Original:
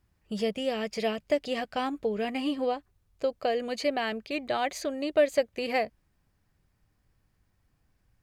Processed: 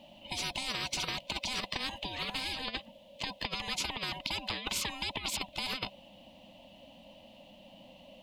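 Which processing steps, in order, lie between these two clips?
split-band scrambler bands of 500 Hz; FFT filter 140 Hz 0 dB, 200 Hz +12 dB, 280 Hz +5 dB, 460 Hz -16 dB, 970 Hz -4 dB, 1.4 kHz -28 dB, 3 kHz +9 dB, 5.3 kHz -12 dB, 8.4 kHz -16 dB; compressor with a negative ratio -27 dBFS, ratio -0.5; spectrum-flattening compressor 10:1

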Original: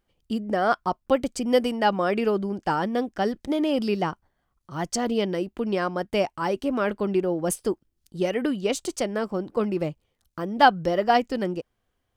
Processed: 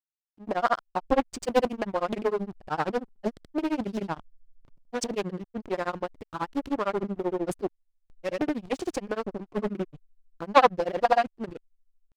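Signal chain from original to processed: hysteresis with a dead band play -29 dBFS; granulator 83 ms, grains 13 per s; loudspeaker Doppler distortion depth 0.57 ms

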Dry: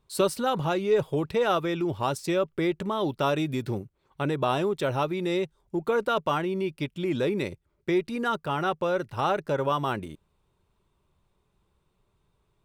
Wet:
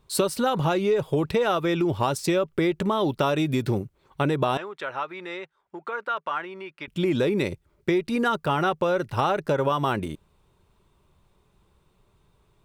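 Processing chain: compression, threshold -27 dBFS, peak gain reduction 9 dB; 4.57–6.88 s: band-pass filter 1.5 kHz, Q 1.4; trim +7.5 dB

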